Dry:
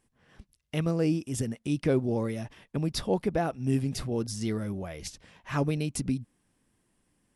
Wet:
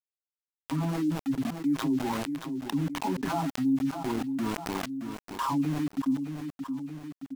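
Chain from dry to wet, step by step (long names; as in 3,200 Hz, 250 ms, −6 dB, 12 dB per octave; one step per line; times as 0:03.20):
every frequency bin delayed by itself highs early, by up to 632 ms
reverb reduction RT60 1.4 s
harmonic and percussive parts rebalanced percussive −7 dB
comb filter 7.4 ms, depth 70%
in parallel at +1 dB: brickwall limiter −28.5 dBFS, peak gain reduction 14 dB
on the sum: pair of resonant band-passes 510 Hz, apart 1.8 octaves
centre clipping without the shift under −47 dBFS
on a send: repeating echo 622 ms, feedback 24%, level −23.5 dB
on the sum: envelope flattener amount 70%
level −1 dB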